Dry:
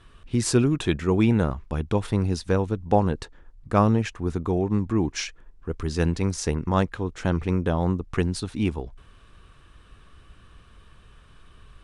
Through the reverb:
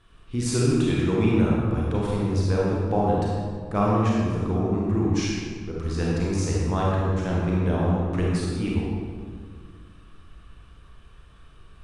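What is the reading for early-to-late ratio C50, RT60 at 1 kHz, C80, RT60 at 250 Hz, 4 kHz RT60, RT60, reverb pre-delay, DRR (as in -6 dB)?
-2.5 dB, 1.6 s, 0.0 dB, 2.4 s, 1.2 s, 1.8 s, 30 ms, -5.0 dB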